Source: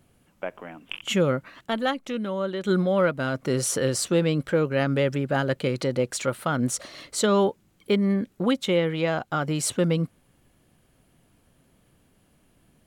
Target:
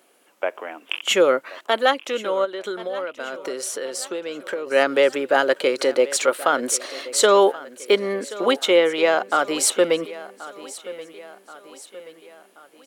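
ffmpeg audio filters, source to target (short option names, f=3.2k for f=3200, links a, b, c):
-filter_complex "[0:a]highpass=f=360:w=0.5412,highpass=f=360:w=1.3066,asplit=3[a][b][c];[a]afade=t=out:st=2.44:d=0.02[d];[b]acompressor=threshold=-35dB:ratio=6,afade=t=in:st=2.44:d=0.02,afade=t=out:st=4.66:d=0.02[e];[c]afade=t=in:st=4.66:d=0.02[f];[d][e][f]amix=inputs=3:normalize=0,aecho=1:1:1079|2158|3237|4316:0.133|0.068|0.0347|0.0177,volume=8dB"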